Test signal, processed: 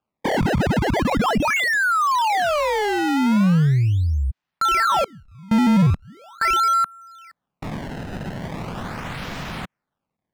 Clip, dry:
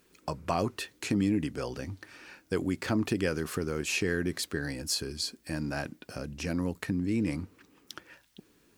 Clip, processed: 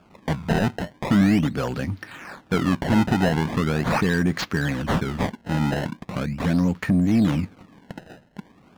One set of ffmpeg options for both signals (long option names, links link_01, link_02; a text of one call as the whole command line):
ffmpeg -i in.wav -filter_complex "[0:a]acrusher=samples=22:mix=1:aa=0.000001:lfo=1:lforange=35.2:lforate=0.4,lowshelf=frequency=260:width_type=q:width=1.5:gain=10,asplit=2[link_01][link_02];[link_02]highpass=frequency=720:poles=1,volume=21dB,asoftclip=type=tanh:threshold=-8dB[link_03];[link_01][link_03]amix=inputs=2:normalize=0,lowpass=frequency=1800:poles=1,volume=-6dB" out.wav